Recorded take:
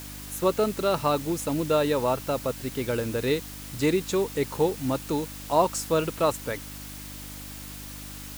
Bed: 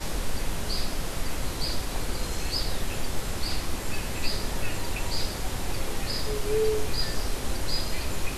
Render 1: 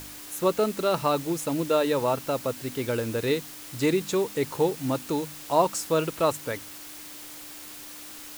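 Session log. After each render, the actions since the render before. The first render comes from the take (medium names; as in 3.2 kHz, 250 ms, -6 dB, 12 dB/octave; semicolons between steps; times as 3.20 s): de-hum 50 Hz, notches 5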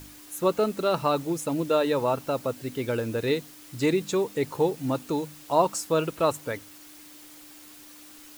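noise reduction 7 dB, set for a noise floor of -42 dBFS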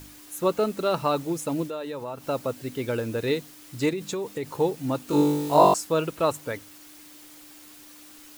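1.67–2.27 s: compression 2:1, threshold -38 dBFS; 3.89–4.46 s: compression, threshold -26 dBFS; 5.06–5.74 s: flutter echo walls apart 3.5 m, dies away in 1.2 s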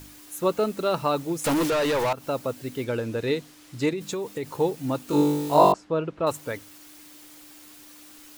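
1.44–2.13 s: overdrive pedal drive 29 dB, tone 7.5 kHz, clips at -16 dBFS; 2.84–4.01 s: treble shelf 11 kHz -11.5 dB; 5.72–6.27 s: tape spacing loss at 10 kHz 31 dB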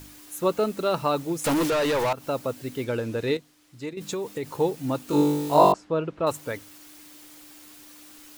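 3.37–3.97 s: gain -10 dB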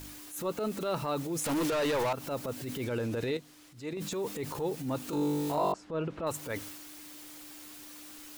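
compression 3:1, threshold -29 dBFS, peak gain reduction 13 dB; transient shaper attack -9 dB, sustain +5 dB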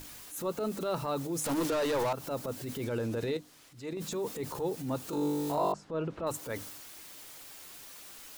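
hum notches 50/100/150/200/250/300 Hz; dynamic bell 2.4 kHz, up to -4 dB, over -52 dBFS, Q 1.2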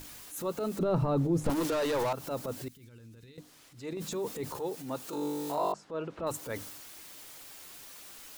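0.79–1.50 s: tilt EQ -4 dB/octave; 2.68–3.38 s: amplifier tone stack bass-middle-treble 6-0-2; 4.57–6.19 s: bass shelf 200 Hz -11.5 dB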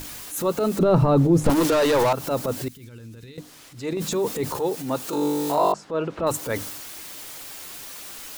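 trim +10.5 dB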